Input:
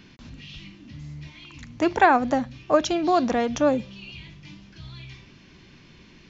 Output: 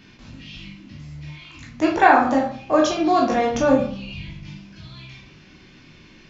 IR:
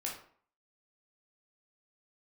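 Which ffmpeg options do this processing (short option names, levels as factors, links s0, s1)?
-filter_complex "[0:a]asettb=1/sr,asplit=3[s0][s1][s2];[s0]atrim=end=3.544[s3];[s1]atrim=start=3.54:end=4.49,asetpts=PTS-STARTPTS,afade=t=in:d=0.004:c=qsin,afade=t=out:st=0.946:d=0.004:c=qsin,lowshelf=f=170:g=11[s4];[s2]atrim=start=4.486[s5];[s3][s4]acrossfade=d=0.004:c1=hsin:c2=qsin[s6];[s6][s5]acrossfade=d=0.004:c1=qsin:c2=hsin[s7];[1:a]atrim=start_sample=2205[s8];[s7][s8]afir=irnorm=-1:irlink=0,volume=1.33"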